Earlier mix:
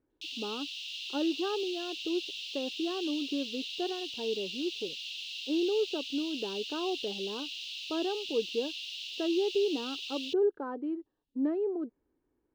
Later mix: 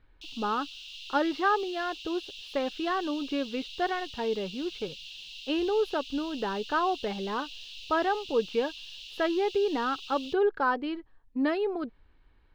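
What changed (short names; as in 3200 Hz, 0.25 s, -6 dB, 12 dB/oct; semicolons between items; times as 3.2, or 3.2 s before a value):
speech: remove band-pass 340 Hz, Q 2; background -4.0 dB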